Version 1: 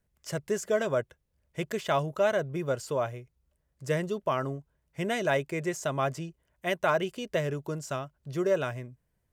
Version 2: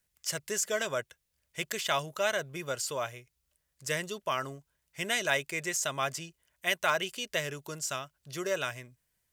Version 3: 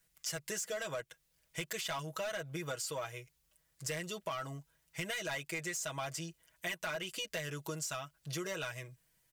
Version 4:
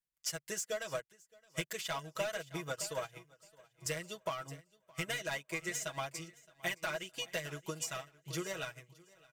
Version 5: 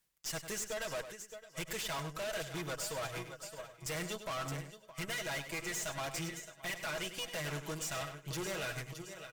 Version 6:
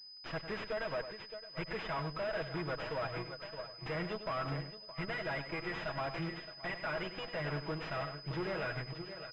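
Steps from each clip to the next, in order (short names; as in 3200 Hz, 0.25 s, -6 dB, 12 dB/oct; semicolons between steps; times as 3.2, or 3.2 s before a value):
tilt shelf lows -9.5 dB, about 1300 Hz
comb 6.2 ms, depth 84%; soft clip -24 dBFS, distortion -11 dB; compressor, threshold -39 dBFS, peak gain reduction 11.5 dB; gain +2 dB
feedback echo 0.618 s, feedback 56%, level -10 dB; upward expander 2.5:1, over -52 dBFS; gain +4 dB
reverse; compressor 6:1, threshold -46 dBFS, peak gain reduction 14.5 dB; reverse; tube stage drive 54 dB, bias 0.6; outdoor echo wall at 17 m, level -10 dB; gain +17.5 dB
pulse-width modulation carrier 5000 Hz; gain +2.5 dB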